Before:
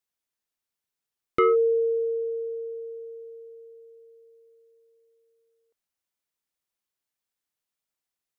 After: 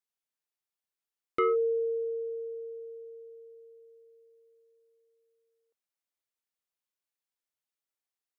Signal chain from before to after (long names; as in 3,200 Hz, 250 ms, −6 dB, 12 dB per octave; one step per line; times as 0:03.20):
bass and treble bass −7 dB, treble −1 dB
level −5.5 dB